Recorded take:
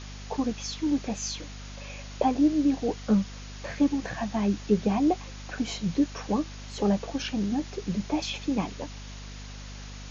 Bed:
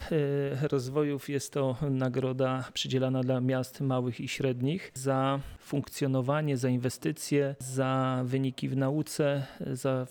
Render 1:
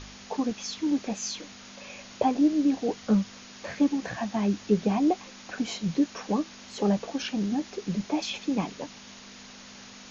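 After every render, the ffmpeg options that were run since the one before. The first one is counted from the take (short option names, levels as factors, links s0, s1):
-af "bandreject=f=50:t=h:w=4,bandreject=f=100:t=h:w=4,bandreject=f=150:t=h:w=4"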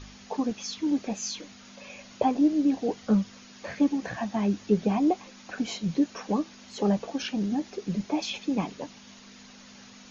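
-af "afftdn=nr=6:nf=-47"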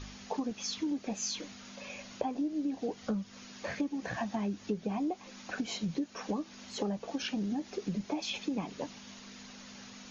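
-af "acompressor=threshold=0.0282:ratio=6"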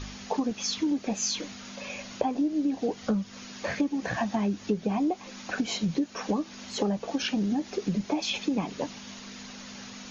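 -af "volume=2.11"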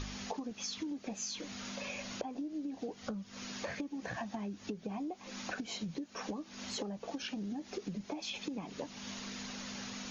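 -af "acompressor=threshold=0.0126:ratio=6"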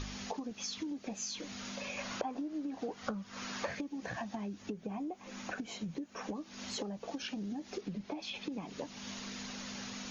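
-filter_complex "[0:a]asettb=1/sr,asplit=3[s0][s1][s2];[s0]atrim=end=1.974[s3];[s1]atrim=start=1.97:end=3.67,asetpts=PTS-STARTPTS,afade=t=in:d=0.004:c=qsin,afade=t=out:st=1.696:d=0.004:c=qsin,equalizer=f=1200:w=0.82:g=8[s4];[s2]atrim=start=3.666[s5];[s3][s4]acrossfade=d=0.004:c1=hsin:c2=qsin[s6];[s6][s5]acrossfade=d=0.004:c1=qsin:c2=hsin,asettb=1/sr,asplit=3[s7][s8][s9];[s7]atrim=end=4.624[s10];[s8]atrim=start=4.62:end=6.35,asetpts=PTS-STARTPTS,afade=t=in:d=0.004:c=qsin,afade=t=out:st=1.726:d=0.004:c=qsin,equalizer=f=4500:t=o:w=1.1:g=-6[s11];[s9]atrim=start=6.346[s12];[s10][s11]acrossfade=d=0.004:c1=hsin:c2=qsin[s13];[s13][s12]acrossfade=d=0.004:c1=qsin:c2=hsin,asettb=1/sr,asplit=3[s14][s15][s16];[s14]atrim=end=7.814[s17];[s15]atrim=start=7.81:end=8.52,asetpts=PTS-STARTPTS,afade=t=in:d=0.004:c=qsin,afade=t=out:st=0.706:d=0.004:c=qsin,lowpass=4700[s18];[s16]atrim=start=8.516[s19];[s17][s18]acrossfade=d=0.004:c1=hsin:c2=qsin[s20];[s20][s19]acrossfade=d=0.004:c1=qsin:c2=hsin"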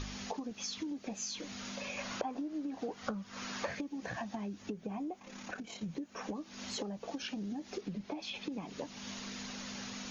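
-filter_complex "[0:a]asettb=1/sr,asplit=3[s0][s1][s2];[s0]atrim=end=5.194[s3];[s1]atrim=start=5.19:end=5.83,asetpts=PTS-STARTPTS,afade=t=in:d=0.004:c=qsin,afade=t=out:st=0.636:d=0.004:c=qsin,tremolo=f=35:d=0.519[s4];[s2]atrim=start=5.826[s5];[s3][s4]acrossfade=d=0.004:c1=hsin:c2=qsin[s6];[s6][s5]acrossfade=d=0.004:c1=qsin:c2=hsin"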